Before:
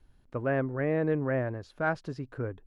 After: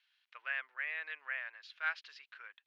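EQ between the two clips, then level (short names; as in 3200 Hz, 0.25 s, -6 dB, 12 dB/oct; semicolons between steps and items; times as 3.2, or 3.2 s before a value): ladder high-pass 2100 Hz, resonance 25%; air absorption 280 m; +17.5 dB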